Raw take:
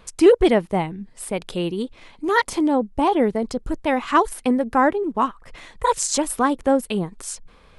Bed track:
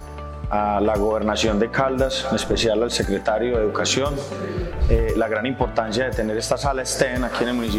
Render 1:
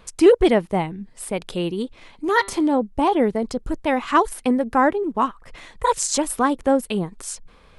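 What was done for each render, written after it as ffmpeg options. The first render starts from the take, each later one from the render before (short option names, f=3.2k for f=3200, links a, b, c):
-filter_complex "[0:a]asplit=3[a][b][c];[a]afade=t=out:st=2.39:d=0.02[d];[b]bandreject=f=197.1:t=h:w=4,bandreject=f=394.2:t=h:w=4,bandreject=f=591.3:t=h:w=4,bandreject=f=788.4:t=h:w=4,bandreject=f=985.5:t=h:w=4,bandreject=f=1.1826k:t=h:w=4,bandreject=f=1.3797k:t=h:w=4,bandreject=f=1.5768k:t=h:w=4,bandreject=f=1.7739k:t=h:w=4,bandreject=f=1.971k:t=h:w=4,bandreject=f=2.1681k:t=h:w=4,bandreject=f=2.3652k:t=h:w=4,bandreject=f=2.5623k:t=h:w=4,bandreject=f=2.7594k:t=h:w=4,bandreject=f=2.9565k:t=h:w=4,bandreject=f=3.1536k:t=h:w=4,bandreject=f=3.3507k:t=h:w=4,bandreject=f=3.5478k:t=h:w=4,bandreject=f=3.7449k:t=h:w=4,bandreject=f=3.942k:t=h:w=4,bandreject=f=4.1391k:t=h:w=4,bandreject=f=4.3362k:t=h:w=4,bandreject=f=4.5333k:t=h:w=4,bandreject=f=4.7304k:t=h:w=4,bandreject=f=4.9275k:t=h:w=4,afade=t=in:st=2.39:d=0.02,afade=t=out:st=2.79:d=0.02[e];[c]afade=t=in:st=2.79:d=0.02[f];[d][e][f]amix=inputs=3:normalize=0"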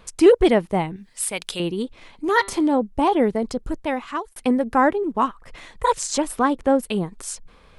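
-filter_complex "[0:a]asettb=1/sr,asplit=3[a][b][c];[a]atrim=end=0.964[d];[b]atrim=start=0.96:end=1.6,asetpts=PTS-STARTPTS,afade=t=in:d=0.004:c=qsin,afade=t=out:st=0.636:d=0.004:c=qsin,tiltshelf=f=1.2k:g=-9[e];[c]atrim=start=1.596[f];[d][e]acrossfade=d=0.004:c1=hsin:c2=qsin[g];[g][f]acrossfade=d=0.004:c1=qsin:c2=hsin,asettb=1/sr,asplit=3[h][i][j];[h]atrim=end=5.924[k];[i]atrim=start=5.92:end=6.83,asetpts=PTS-STARTPTS,afade=t=in:d=0.004:c=qsin,afade=t=out:st=0.906:d=0.004:c=qsin,highshelf=f=7.4k:g=-8.5[l];[j]atrim=start=6.826[m];[k][l]acrossfade=d=0.004:c1=hsin:c2=qsin[n];[n][m]acrossfade=d=0.004:c1=qsin:c2=hsin,asplit=2[o][p];[o]atrim=end=4.36,asetpts=PTS-STARTPTS,afade=t=out:st=3.36:d=1:c=qsin[q];[p]atrim=start=4.36,asetpts=PTS-STARTPTS,afade=t=in:d=0.004:c=hsin[r];[q][r]concat=n=2:v=0:a=1"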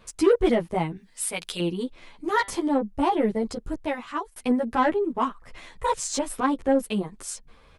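-filter_complex "[0:a]asoftclip=type=tanh:threshold=-10.5dB,asplit=2[a][b];[b]adelay=10.6,afreqshift=0.26[c];[a][c]amix=inputs=2:normalize=1"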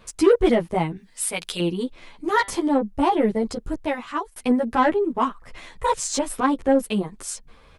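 -af "volume=3dB"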